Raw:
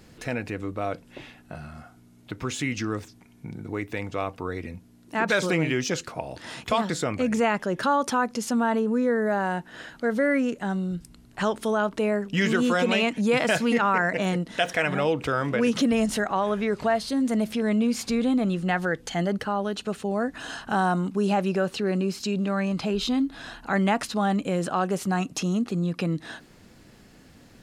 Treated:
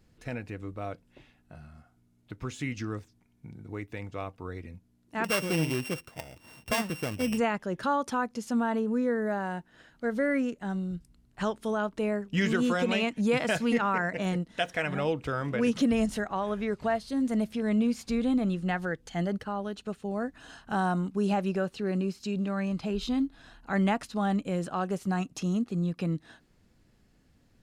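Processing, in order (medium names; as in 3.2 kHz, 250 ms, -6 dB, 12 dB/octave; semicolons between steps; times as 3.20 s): 5.24–7.38 s: sorted samples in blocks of 16 samples; bass shelf 110 Hz +11 dB; upward expansion 1.5:1, over -42 dBFS; trim -3.5 dB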